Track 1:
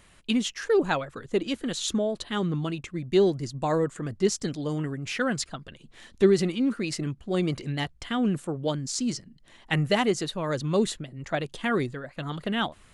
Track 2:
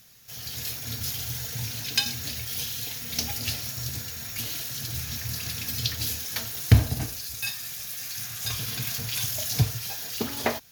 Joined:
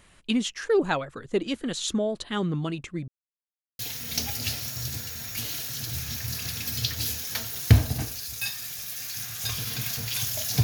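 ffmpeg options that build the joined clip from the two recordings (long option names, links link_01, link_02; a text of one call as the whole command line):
ffmpeg -i cue0.wav -i cue1.wav -filter_complex "[0:a]apad=whole_dur=10.63,atrim=end=10.63,asplit=2[link_01][link_02];[link_01]atrim=end=3.08,asetpts=PTS-STARTPTS,afade=type=out:start_time=3.076:duration=0.004:curve=hsin[link_03];[link_02]atrim=start=3.08:end=3.79,asetpts=PTS-STARTPTS,volume=0[link_04];[1:a]atrim=start=2.8:end=9.64,asetpts=PTS-STARTPTS,afade=type=in:duration=0.004:curve=hsin[link_05];[link_03][link_04][link_05]concat=n=3:v=0:a=1" out.wav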